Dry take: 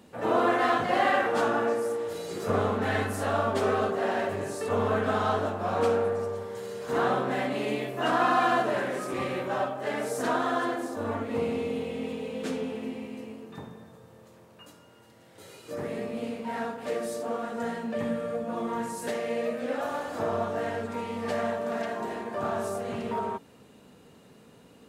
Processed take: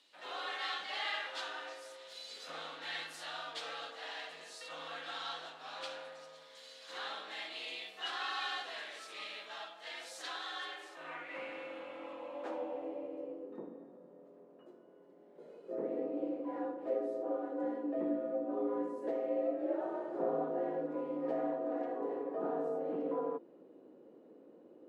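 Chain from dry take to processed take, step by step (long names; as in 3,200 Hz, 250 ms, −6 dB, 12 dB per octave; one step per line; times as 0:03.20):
frequency shifter +62 Hz
band-pass filter sweep 3,800 Hz → 400 Hz, 0:10.50–0:13.55
level +1.5 dB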